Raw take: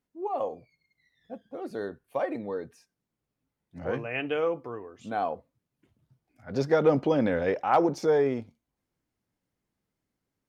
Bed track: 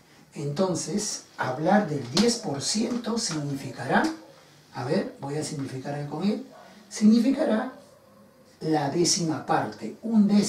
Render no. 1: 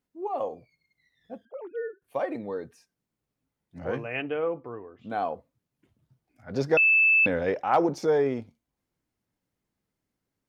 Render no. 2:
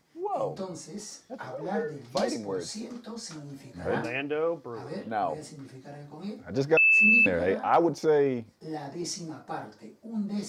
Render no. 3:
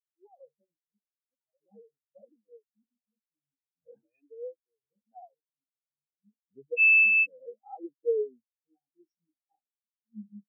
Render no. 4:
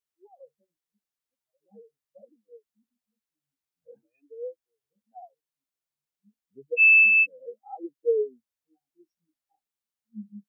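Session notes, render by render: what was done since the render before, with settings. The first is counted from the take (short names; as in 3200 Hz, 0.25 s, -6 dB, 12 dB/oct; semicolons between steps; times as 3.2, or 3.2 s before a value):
1.45–2.02 sine-wave speech; 4.22–5.1 air absorption 380 m; 6.77–7.26 bleep 2630 Hz -16.5 dBFS
add bed track -12 dB
compressor 2.5:1, threshold -25 dBFS, peak gain reduction 6 dB; spectral expander 4:1
gain +3.5 dB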